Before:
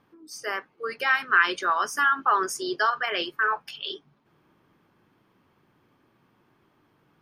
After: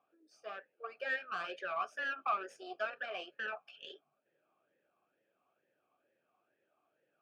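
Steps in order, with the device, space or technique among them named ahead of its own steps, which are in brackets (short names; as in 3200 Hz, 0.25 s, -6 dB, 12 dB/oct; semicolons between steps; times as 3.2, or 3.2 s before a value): talk box (tube stage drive 21 dB, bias 0.6; vowel sweep a-e 2.2 Hz); gain +2 dB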